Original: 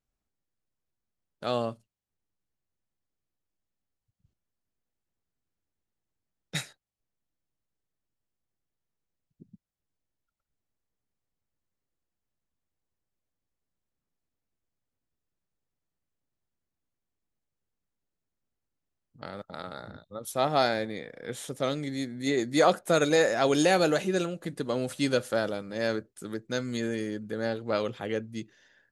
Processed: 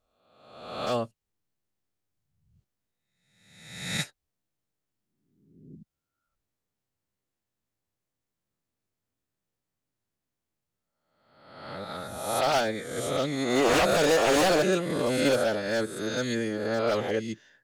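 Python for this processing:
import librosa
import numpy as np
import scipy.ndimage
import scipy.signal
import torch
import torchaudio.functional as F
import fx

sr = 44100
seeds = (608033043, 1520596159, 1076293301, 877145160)

y = fx.spec_swells(x, sr, rise_s=1.57)
y = 10.0 ** (-17.0 / 20.0) * (np.abs((y / 10.0 ** (-17.0 / 20.0) + 3.0) % 4.0 - 2.0) - 1.0)
y = fx.stretch_vocoder(y, sr, factor=0.61)
y = y * librosa.db_to_amplitude(1.5)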